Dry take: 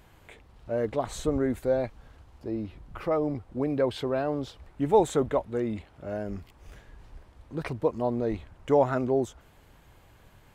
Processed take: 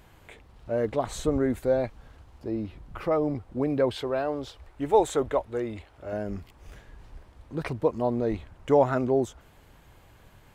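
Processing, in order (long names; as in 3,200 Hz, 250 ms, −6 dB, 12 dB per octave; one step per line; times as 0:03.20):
0:03.94–0:06.13: parametric band 180 Hz −11.5 dB 1 octave
level +1.5 dB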